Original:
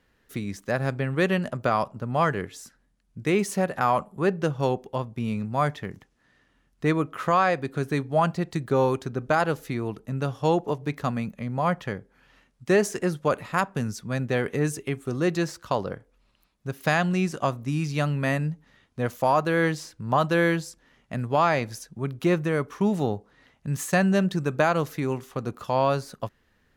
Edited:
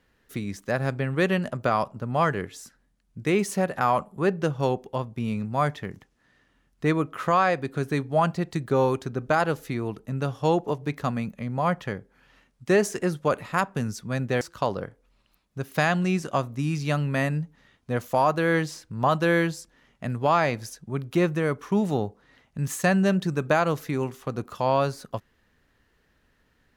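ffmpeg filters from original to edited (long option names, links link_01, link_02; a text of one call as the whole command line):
ffmpeg -i in.wav -filter_complex "[0:a]asplit=2[link_01][link_02];[link_01]atrim=end=14.412[link_03];[link_02]atrim=start=15.498[link_04];[link_03][link_04]acrossfade=duration=0.004:curve1=hsin:curve2=hsin" out.wav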